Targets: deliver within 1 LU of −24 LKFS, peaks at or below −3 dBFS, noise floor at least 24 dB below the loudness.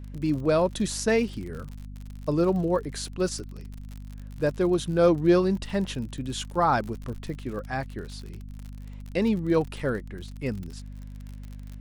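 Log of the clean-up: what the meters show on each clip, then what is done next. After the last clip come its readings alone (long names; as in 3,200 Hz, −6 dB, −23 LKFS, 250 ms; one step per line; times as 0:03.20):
crackle rate 52 per second; mains hum 50 Hz; hum harmonics up to 250 Hz; level of the hum −37 dBFS; integrated loudness −26.5 LKFS; sample peak −9.0 dBFS; target loudness −24.0 LKFS
→ click removal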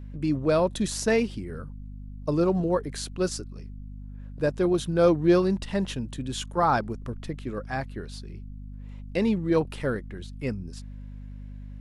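crackle rate 0 per second; mains hum 50 Hz; hum harmonics up to 250 Hz; level of the hum −37 dBFS
→ hum removal 50 Hz, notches 5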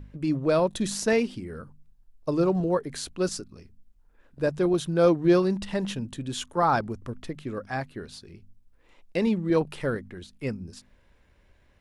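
mains hum none found; integrated loudness −26.5 LKFS; sample peak −9.5 dBFS; target loudness −24.0 LKFS
→ level +2.5 dB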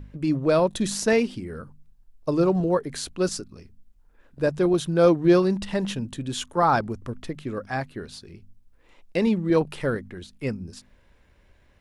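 integrated loudness −24.0 LKFS; sample peak −7.0 dBFS; background noise floor −59 dBFS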